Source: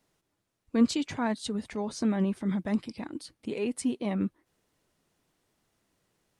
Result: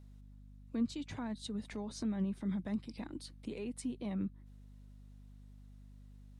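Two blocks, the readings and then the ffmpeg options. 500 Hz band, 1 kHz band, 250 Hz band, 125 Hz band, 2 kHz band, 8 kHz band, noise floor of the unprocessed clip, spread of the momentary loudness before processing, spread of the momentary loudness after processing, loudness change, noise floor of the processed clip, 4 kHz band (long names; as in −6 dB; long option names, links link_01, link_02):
−12.5 dB, −13.5 dB, −9.0 dB, −6.5 dB, −12.0 dB, −10.5 dB, −80 dBFS, 12 LU, 21 LU, −9.0 dB, −55 dBFS, −9.5 dB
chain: -filter_complex "[0:a]equalizer=frequency=3800:width=7.2:gain=5.5,acrossover=split=190[link_01][link_02];[link_02]acompressor=threshold=-39dB:ratio=5[link_03];[link_01][link_03]amix=inputs=2:normalize=0,aeval=exprs='val(0)+0.00316*(sin(2*PI*50*n/s)+sin(2*PI*2*50*n/s)/2+sin(2*PI*3*50*n/s)/3+sin(2*PI*4*50*n/s)/4+sin(2*PI*5*50*n/s)/5)':channel_layout=same,volume=-3.5dB"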